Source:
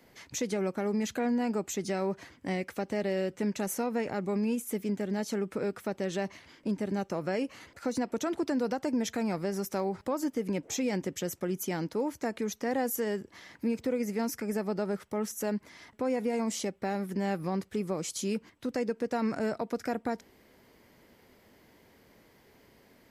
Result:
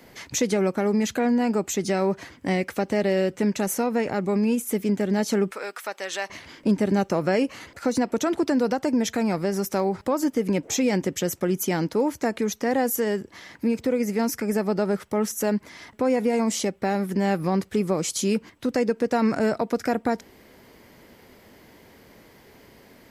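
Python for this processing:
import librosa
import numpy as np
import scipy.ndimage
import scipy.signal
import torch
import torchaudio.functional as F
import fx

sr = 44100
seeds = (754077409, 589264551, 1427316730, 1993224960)

y = fx.highpass(x, sr, hz=930.0, slope=12, at=(5.51, 6.3))
y = fx.rider(y, sr, range_db=4, speed_s=2.0)
y = y * 10.0 ** (8.0 / 20.0)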